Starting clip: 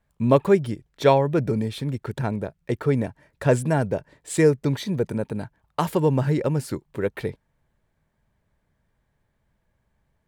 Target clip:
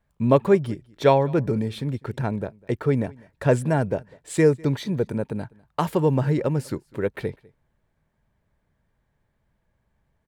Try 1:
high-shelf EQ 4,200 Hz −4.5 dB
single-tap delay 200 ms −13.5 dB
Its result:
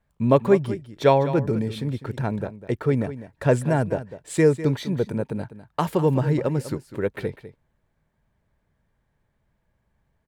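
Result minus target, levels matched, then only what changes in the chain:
echo-to-direct +11.5 dB
change: single-tap delay 200 ms −25 dB

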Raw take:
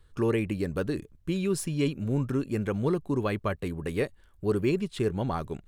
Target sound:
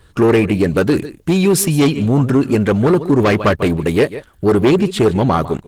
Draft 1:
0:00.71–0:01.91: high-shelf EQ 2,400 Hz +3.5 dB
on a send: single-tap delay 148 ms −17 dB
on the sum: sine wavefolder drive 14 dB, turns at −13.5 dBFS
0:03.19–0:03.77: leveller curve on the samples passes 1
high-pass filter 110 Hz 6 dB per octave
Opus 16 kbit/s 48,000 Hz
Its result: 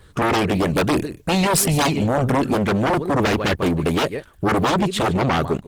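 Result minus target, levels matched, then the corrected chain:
sine wavefolder: distortion +16 dB
0:00.71–0:01.91: high-shelf EQ 2,400 Hz +3.5 dB
on a send: single-tap delay 148 ms −17 dB
on the sum: sine wavefolder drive 14 dB, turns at −6 dBFS
0:03.19–0:03.77: leveller curve on the samples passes 1
high-pass filter 110 Hz 6 dB per octave
Opus 16 kbit/s 48,000 Hz

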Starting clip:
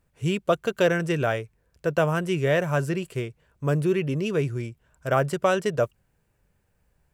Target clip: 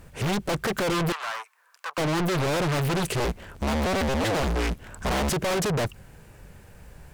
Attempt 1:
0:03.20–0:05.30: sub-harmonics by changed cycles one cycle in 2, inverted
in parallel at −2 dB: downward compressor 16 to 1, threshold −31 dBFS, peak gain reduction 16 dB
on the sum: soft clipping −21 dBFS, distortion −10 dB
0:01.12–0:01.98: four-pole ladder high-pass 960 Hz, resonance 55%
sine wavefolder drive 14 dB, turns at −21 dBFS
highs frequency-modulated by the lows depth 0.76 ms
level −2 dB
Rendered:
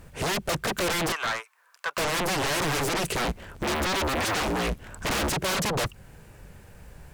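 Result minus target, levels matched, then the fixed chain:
downward compressor: peak gain reduction +7.5 dB; soft clipping: distortion −7 dB
0:03.20–0:05.30: sub-harmonics by changed cycles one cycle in 2, inverted
in parallel at −2 dB: downward compressor 16 to 1, threshold −23 dBFS, peak gain reduction 8.5 dB
on the sum: soft clipping −32.5 dBFS, distortion −4 dB
0:01.12–0:01.98: four-pole ladder high-pass 960 Hz, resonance 55%
sine wavefolder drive 14 dB, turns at −21 dBFS
highs frequency-modulated by the lows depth 0.76 ms
level −2 dB

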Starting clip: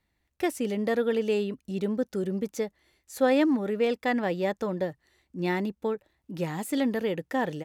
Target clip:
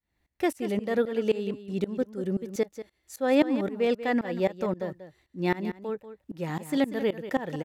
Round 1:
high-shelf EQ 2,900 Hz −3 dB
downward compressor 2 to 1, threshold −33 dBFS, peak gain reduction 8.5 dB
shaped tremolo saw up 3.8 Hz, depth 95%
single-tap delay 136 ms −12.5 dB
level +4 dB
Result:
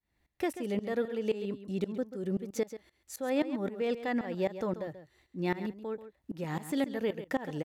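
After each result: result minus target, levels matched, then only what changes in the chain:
downward compressor: peak gain reduction +8.5 dB; echo 53 ms early
remove: downward compressor 2 to 1, threshold −33 dBFS, peak gain reduction 8.5 dB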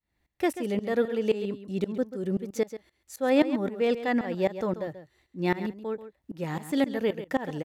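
echo 53 ms early
change: single-tap delay 189 ms −12.5 dB

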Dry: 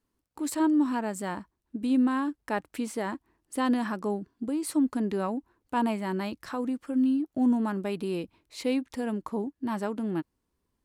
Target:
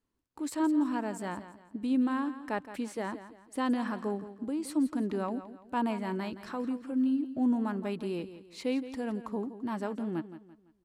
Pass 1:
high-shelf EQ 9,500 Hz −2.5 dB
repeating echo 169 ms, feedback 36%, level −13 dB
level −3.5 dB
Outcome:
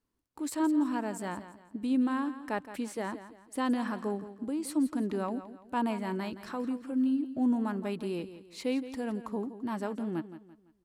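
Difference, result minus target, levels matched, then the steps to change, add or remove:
8,000 Hz band +2.5 dB
change: high-shelf EQ 9,500 Hz −9 dB

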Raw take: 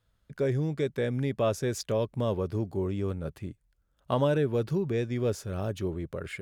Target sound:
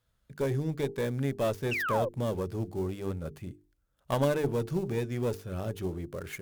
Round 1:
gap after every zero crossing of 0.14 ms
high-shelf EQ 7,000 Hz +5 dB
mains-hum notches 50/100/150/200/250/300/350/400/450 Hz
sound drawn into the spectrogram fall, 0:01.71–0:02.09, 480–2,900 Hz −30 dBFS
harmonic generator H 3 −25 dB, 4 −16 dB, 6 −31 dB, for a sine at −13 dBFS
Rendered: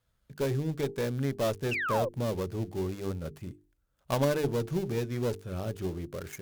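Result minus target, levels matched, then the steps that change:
gap after every zero crossing: distortion +5 dB
change: gap after every zero crossing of 0.059 ms

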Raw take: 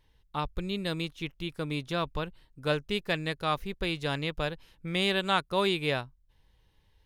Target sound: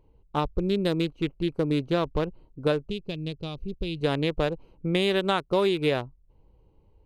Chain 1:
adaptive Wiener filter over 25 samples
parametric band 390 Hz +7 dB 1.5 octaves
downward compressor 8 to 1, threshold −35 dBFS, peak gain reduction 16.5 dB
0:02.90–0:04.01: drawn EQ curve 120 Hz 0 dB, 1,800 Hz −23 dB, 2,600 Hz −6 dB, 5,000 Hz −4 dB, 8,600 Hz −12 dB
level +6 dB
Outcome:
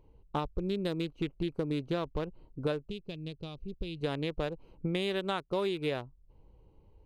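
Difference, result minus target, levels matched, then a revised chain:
downward compressor: peak gain reduction +8.5 dB
adaptive Wiener filter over 25 samples
parametric band 390 Hz +7 dB 1.5 octaves
downward compressor 8 to 1, threshold −25.5 dBFS, peak gain reduction 8 dB
0:02.90–0:04.01: drawn EQ curve 120 Hz 0 dB, 1,800 Hz −23 dB, 2,600 Hz −6 dB, 5,000 Hz −4 dB, 8,600 Hz −12 dB
level +6 dB

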